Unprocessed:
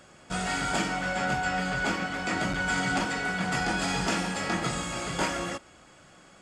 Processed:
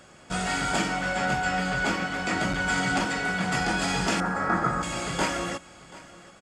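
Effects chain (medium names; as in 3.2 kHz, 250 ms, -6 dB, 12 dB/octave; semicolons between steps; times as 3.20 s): 4.20–4.83 s: resonant high shelf 2.1 kHz -13.5 dB, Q 3; delay 734 ms -20 dB; trim +2 dB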